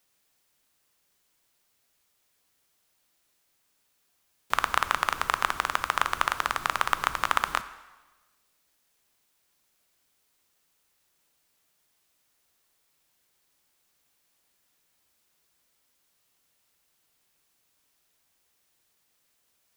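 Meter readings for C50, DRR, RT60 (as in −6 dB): 14.0 dB, 12.0 dB, 1.2 s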